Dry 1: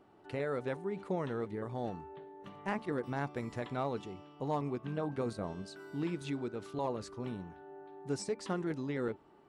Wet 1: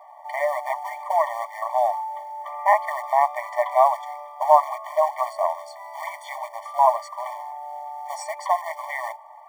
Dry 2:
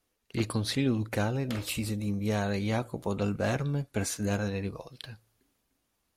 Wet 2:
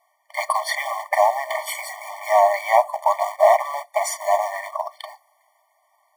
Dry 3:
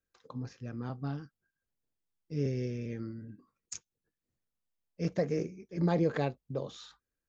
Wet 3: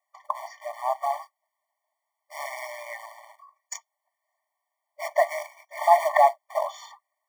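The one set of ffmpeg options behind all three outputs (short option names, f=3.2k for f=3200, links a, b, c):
-af "acrusher=bits=4:mode=log:mix=0:aa=0.000001,apsyclip=21dB,highshelf=f=2.2k:t=q:w=1.5:g=-11.5,afftfilt=real='re*eq(mod(floor(b*sr/1024/600),2),1)':imag='im*eq(mod(floor(b*sr/1024/600),2),1)':win_size=1024:overlap=0.75"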